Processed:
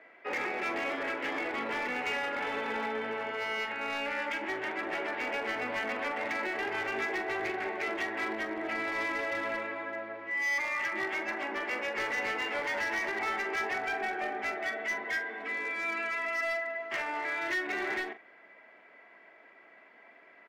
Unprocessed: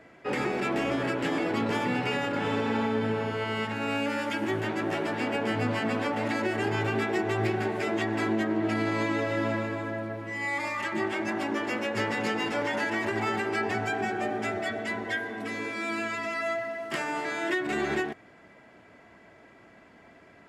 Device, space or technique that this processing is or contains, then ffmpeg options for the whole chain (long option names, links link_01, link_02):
megaphone: -filter_complex "[0:a]highpass=460,lowpass=3200,equalizer=frequency=2100:width_type=o:width=0.45:gain=7,asoftclip=type=hard:threshold=-25dB,asplit=2[link_01][link_02];[link_02]adelay=44,volume=-11dB[link_03];[link_01][link_03]amix=inputs=2:normalize=0,volume=-3dB"